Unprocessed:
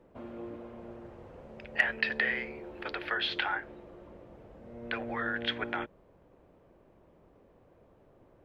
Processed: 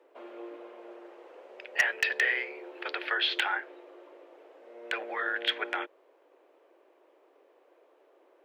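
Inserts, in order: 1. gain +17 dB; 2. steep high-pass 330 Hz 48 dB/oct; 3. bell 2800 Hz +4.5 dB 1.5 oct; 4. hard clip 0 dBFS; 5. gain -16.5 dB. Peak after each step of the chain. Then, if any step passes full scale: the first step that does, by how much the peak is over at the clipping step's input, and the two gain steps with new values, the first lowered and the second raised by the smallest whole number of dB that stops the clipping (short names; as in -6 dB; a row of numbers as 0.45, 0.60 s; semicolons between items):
+5.0, +6.0, +9.0, 0.0, -16.5 dBFS; step 1, 9.0 dB; step 1 +8 dB, step 5 -7.5 dB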